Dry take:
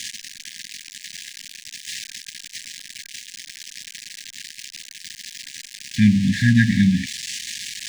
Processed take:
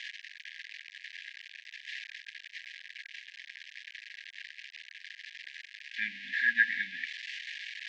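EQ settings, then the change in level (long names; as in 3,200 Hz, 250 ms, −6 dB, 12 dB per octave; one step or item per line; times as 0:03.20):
high-pass filter 660 Hz 24 dB per octave
head-to-tape spacing loss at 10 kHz 45 dB
parametric band 1,900 Hz +6.5 dB 2.7 octaves
0.0 dB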